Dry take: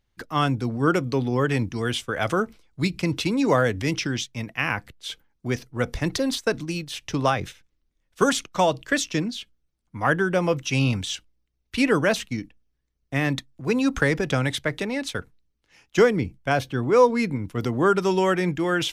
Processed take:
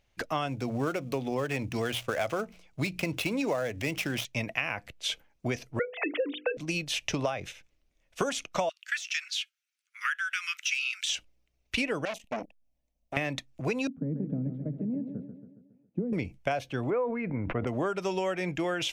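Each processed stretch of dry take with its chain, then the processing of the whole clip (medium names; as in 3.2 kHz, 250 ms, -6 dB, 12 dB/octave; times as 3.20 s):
0.48–4.25 s: dead-time distortion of 0.068 ms + hum notches 60/120/180 Hz
5.79–6.57 s: formants replaced by sine waves + hum notches 50/100/150/200/250/300/350/400/450/500 Hz
8.69–11.09 s: steep high-pass 1.3 kHz 72 dB/octave + de-esser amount 65%
12.05–13.17 s: peaking EQ 4.1 kHz -8 dB 2.5 oct + static phaser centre 390 Hz, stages 6 + transformer saturation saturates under 2.6 kHz
13.87–16.13 s: Butterworth band-pass 200 Hz, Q 1.6 + feedback delay 138 ms, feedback 54%, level -9 dB
16.90–17.67 s: low-pass 2 kHz 24 dB/octave + decay stretcher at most 50 dB/s
whole clip: fifteen-band graphic EQ 630 Hz +11 dB, 2.5 kHz +9 dB, 6.3 kHz +5 dB; compression 10:1, threshold -27 dBFS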